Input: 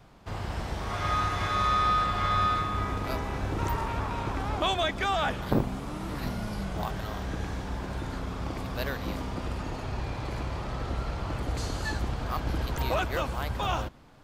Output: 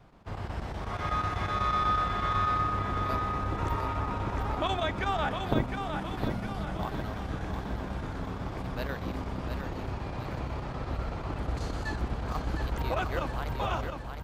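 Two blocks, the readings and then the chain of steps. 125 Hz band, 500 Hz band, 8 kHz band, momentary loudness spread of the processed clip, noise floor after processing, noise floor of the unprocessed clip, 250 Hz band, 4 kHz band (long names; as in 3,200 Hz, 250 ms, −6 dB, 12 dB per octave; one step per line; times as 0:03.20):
−1.0 dB, −1.5 dB, −7.5 dB, 9 LU, −38 dBFS, −37 dBFS, −1.0 dB, −5.5 dB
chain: high-shelf EQ 3,500 Hz −8.5 dB
square-wave tremolo 8.1 Hz, depth 60%, duty 85%
repeating echo 710 ms, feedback 51%, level −6 dB
level −1.5 dB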